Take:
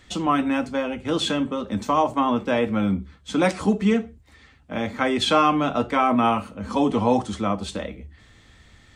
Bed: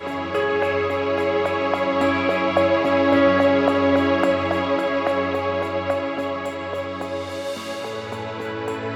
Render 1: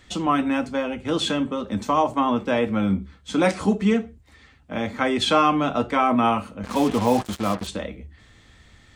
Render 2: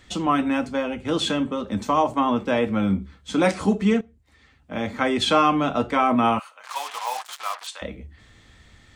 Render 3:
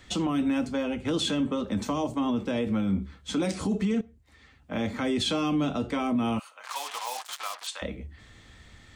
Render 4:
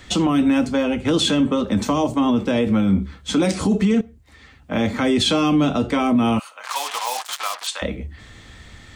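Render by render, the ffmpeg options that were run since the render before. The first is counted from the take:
-filter_complex "[0:a]asettb=1/sr,asplit=3[s0][s1][s2];[s0]atrim=end=2.874[s3];[s1]atrim=start=2.87:end=3.75,asetpts=PTS-STARTPTS,afade=t=in:d=0.004:c=qsin,afade=t=out:st=0.876:d=0.004:c=qsin,asplit=2[s4][s5];[s5]adelay=31,volume=0.251[s6];[s4][s6]amix=inputs=2:normalize=0,atrim=end_sample=38808[s7];[s2]atrim=start=3.746[s8];[s3][s7]acrossfade=d=0.004:c1=hsin:c2=qsin[s9];[s9][s8]acrossfade=d=0.004:c1=qsin:c2=hsin,asettb=1/sr,asplit=3[s10][s11][s12];[s10]atrim=end=6.634[s13];[s11]atrim=start=6.63:end=7.67,asetpts=PTS-STARTPTS,afade=t=in:d=0.004:c=qsin,afade=t=out:st=1.036:d=0.004:c=qsin,acrusher=bits=4:mix=0:aa=0.5[s14];[s12]atrim=start=7.666[s15];[s13][s14]acrossfade=d=0.004:c1=hsin:c2=qsin[s16];[s16][s15]acrossfade=d=0.004:c1=qsin:c2=hsin"
-filter_complex "[0:a]asettb=1/sr,asplit=3[s0][s1][s2];[s0]atrim=end=6.394[s3];[s1]atrim=start=6.39:end=7.82,asetpts=PTS-STARTPTS,afade=t=in:d=0.004:c=qsin,afade=t=out:st=1.426:d=0.004:c=qsin,highpass=f=860:w=0.5412,highpass=f=860:w=1.3066[s4];[s2]atrim=start=7.816[s5];[s3][s4]acrossfade=d=0.004:c1=hsin:c2=qsin[s6];[s6][s5]acrossfade=d=0.004:c1=qsin:c2=hsin,asplit=2[s7][s8];[s7]atrim=end=4.01,asetpts=PTS-STARTPTS,afade=t=out:st=4.006:d=0.004:c=hsin:silence=0.223872[s9];[s8]atrim=start=4.01,asetpts=PTS-STARTPTS,afade=t=in:d=0.89:silence=0.223872[s10];[s9][s10]concat=n=2:v=0:a=1"
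-filter_complex "[0:a]acrossover=split=450|3000[s0][s1][s2];[s1]acompressor=threshold=0.02:ratio=6[s3];[s0][s3][s2]amix=inputs=3:normalize=0,alimiter=limit=0.106:level=0:latency=1:release=27"
-af "volume=2.82"

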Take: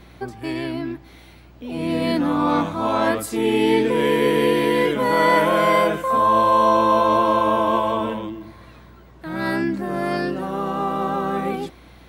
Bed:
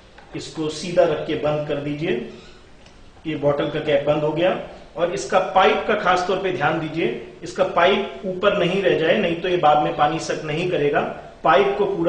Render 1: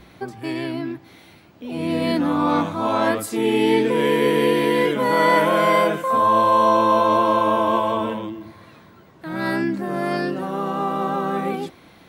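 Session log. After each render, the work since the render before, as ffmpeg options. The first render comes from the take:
-af "bandreject=f=60:t=h:w=4,bandreject=f=120:t=h:w=4"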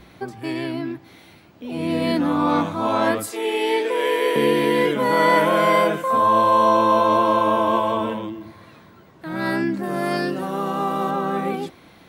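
-filter_complex "[0:a]asettb=1/sr,asplit=3[s0][s1][s2];[s0]atrim=end=3.314[s3];[s1]atrim=start=3.31:end=4.36,asetpts=PTS-STARTPTS,afade=t=in:d=0.004:c=qsin,afade=t=out:st=1.046:d=0.004:c=qsin,highpass=f=410:w=0.5412,highpass=f=410:w=1.3066[s4];[s2]atrim=start=4.356[s5];[s3][s4]acrossfade=d=0.004:c1=hsin:c2=qsin[s6];[s6][s5]acrossfade=d=0.004:c1=qsin:c2=hsin,asettb=1/sr,asplit=3[s7][s8][s9];[s7]atrim=end=9.834[s10];[s8]atrim=start=9.83:end=11.11,asetpts=PTS-STARTPTS,afade=t=in:d=0.004:c=qsin,afade=t=out:st=1.276:d=0.004:c=qsin,highshelf=f=4500:g=7[s11];[s9]atrim=start=11.106[s12];[s10][s11]acrossfade=d=0.004:c1=hsin:c2=qsin[s13];[s13][s12]acrossfade=d=0.004:c1=qsin:c2=hsin"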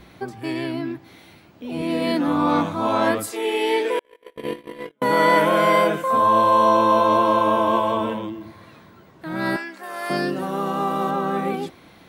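-filter_complex "[0:a]asettb=1/sr,asplit=3[s0][s1][s2];[s0]atrim=end=1.824[s3];[s1]atrim=start=1.82:end=2.28,asetpts=PTS-STARTPTS,afade=t=in:d=0.004:c=qsin,afade=t=out:st=0.456:d=0.004:c=qsin,highpass=200[s4];[s2]atrim=start=2.276[s5];[s3][s4]acrossfade=d=0.004:c1=hsin:c2=qsin[s6];[s6][s5]acrossfade=d=0.004:c1=qsin:c2=hsin,asettb=1/sr,asplit=3[s7][s8][s9];[s7]atrim=end=3.994[s10];[s8]atrim=start=3.99:end=5.02,asetpts=PTS-STARTPTS,afade=t=in:d=0.004:c=qsin,afade=t=out:st=1.026:d=0.004:c=qsin,agate=range=0.00501:threshold=0.158:ratio=16:release=100:detection=peak[s11];[s9]atrim=start=5.016[s12];[s10][s11]acrossfade=d=0.004:c1=hsin:c2=qsin[s13];[s13][s12]acrossfade=d=0.004:c1=qsin:c2=hsin,asettb=1/sr,asplit=3[s14][s15][s16];[s14]atrim=end=9.564[s17];[s15]atrim=start=9.56:end=10.1,asetpts=PTS-STARTPTS,afade=t=in:d=0.004:c=qsin,afade=t=out:st=0.536:d=0.004:c=qsin,highpass=850[s18];[s16]atrim=start=10.096[s19];[s17][s18]acrossfade=d=0.004:c1=hsin:c2=qsin[s20];[s20][s19]acrossfade=d=0.004:c1=qsin:c2=hsin"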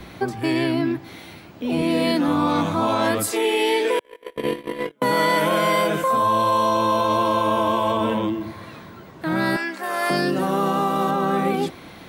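-filter_complex "[0:a]acrossover=split=140|3000[s0][s1][s2];[s1]acompressor=threshold=0.0631:ratio=3[s3];[s0][s3][s2]amix=inputs=3:normalize=0,asplit=2[s4][s5];[s5]alimiter=limit=0.0891:level=0:latency=1:release=113,volume=1.33[s6];[s4][s6]amix=inputs=2:normalize=0"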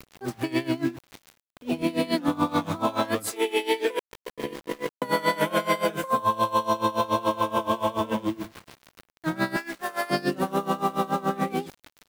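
-af "aeval=exprs='val(0)*gte(abs(val(0)),0.0224)':c=same,aeval=exprs='val(0)*pow(10,-20*(0.5-0.5*cos(2*PI*7*n/s))/20)':c=same"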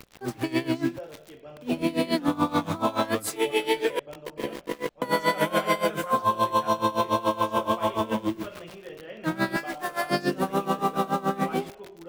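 -filter_complex "[1:a]volume=0.0631[s0];[0:a][s0]amix=inputs=2:normalize=0"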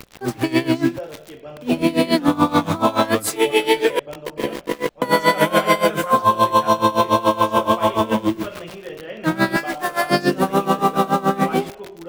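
-af "volume=2.51"

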